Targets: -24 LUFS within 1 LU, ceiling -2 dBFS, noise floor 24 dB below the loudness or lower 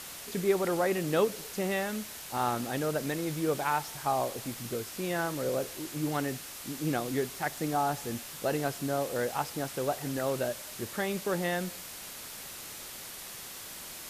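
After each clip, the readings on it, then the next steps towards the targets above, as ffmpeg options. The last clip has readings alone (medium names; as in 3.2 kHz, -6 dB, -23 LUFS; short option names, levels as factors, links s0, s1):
noise floor -44 dBFS; noise floor target -57 dBFS; loudness -32.5 LUFS; peak level -14.5 dBFS; loudness target -24.0 LUFS
-> -af "afftdn=nr=13:nf=-44"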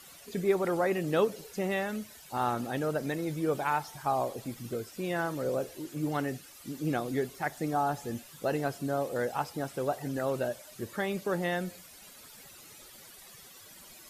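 noise floor -52 dBFS; noise floor target -57 dBFS
-> -af "afftdn=nr=6:nf=-52"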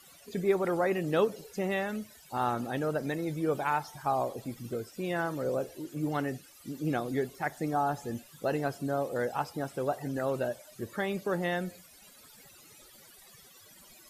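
noise floor -56 dBFS; noise floor target -57 dBFS
-> -af "afftdn=nr=6:nf=-56"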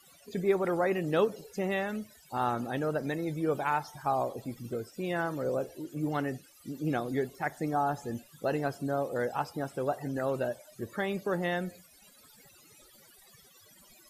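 noise floor -59 dBFS; loudness -32.5 LUFS; peak level -15.0 dBFS; loudness target -24.0 LUFS
-> -af "volume=2.66"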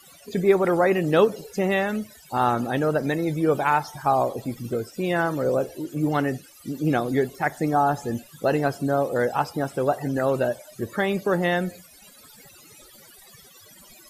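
loudness -24.0 LUFS; peak level -6.5 dBFS; noise floor -50 dBFS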